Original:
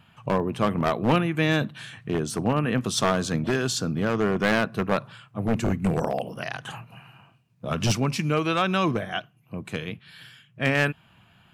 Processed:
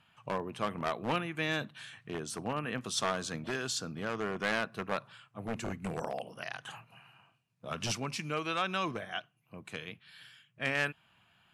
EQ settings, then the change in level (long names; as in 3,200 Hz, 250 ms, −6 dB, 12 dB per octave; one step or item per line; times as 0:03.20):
low-pass filter 12,000 Hz 24 dB per octave
low-shelf EQ 480 Hz −9.5 dB
−6.5 dB